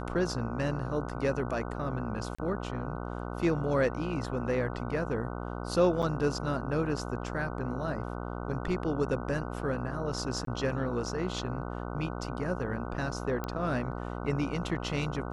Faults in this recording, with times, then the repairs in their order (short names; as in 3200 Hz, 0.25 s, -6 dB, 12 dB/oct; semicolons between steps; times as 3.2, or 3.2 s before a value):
buzz 60 Hz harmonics 25 -37 dBFS
2.35–2.38 gap 35 ms
6.02–6.03 gap 6.6 ms
10.45–10.47 gap 23 ms
13.44 pop -20 dBFS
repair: de-click; de-hum 60 Hz, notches 25; interpolate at 2.35, 35 ms; interpolate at 6.02, 6.6 ms; interpolate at 10.45, 23 ms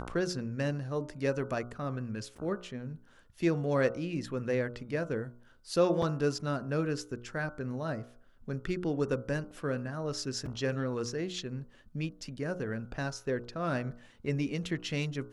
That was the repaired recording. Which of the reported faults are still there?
13.44 pop